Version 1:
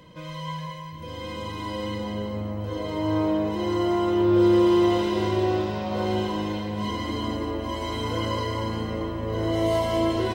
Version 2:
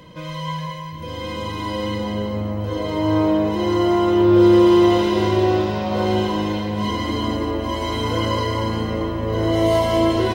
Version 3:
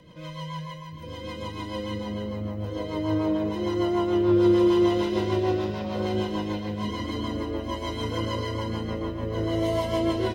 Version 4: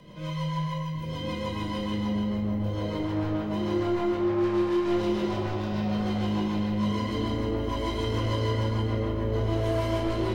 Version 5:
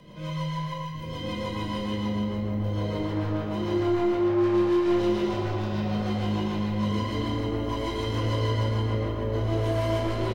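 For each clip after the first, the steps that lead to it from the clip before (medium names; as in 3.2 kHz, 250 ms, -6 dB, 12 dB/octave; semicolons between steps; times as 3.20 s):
band-stop 7.8 kHz, Q 14; trim +6 dB
rotary cabinet horn 6.7 Hz; trim -5.5 dB
saturation -25.5 dBFS, distortion -9 dB; compression 2:1, threshold -32 dBFS, peak gain reduction 3 dB; simulated room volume 320 m³, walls mixed, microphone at 1.3 m
delay 117 ms -7.5 dB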